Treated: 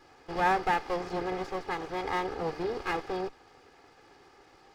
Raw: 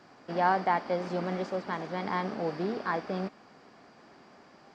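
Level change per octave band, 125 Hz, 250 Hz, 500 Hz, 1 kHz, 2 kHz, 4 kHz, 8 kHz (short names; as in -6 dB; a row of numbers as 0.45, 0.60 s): -5.0 dB, -2.5 dB, -0.5 dB, 0.0 dB, +1.5 dB, +3.0 dB, n/a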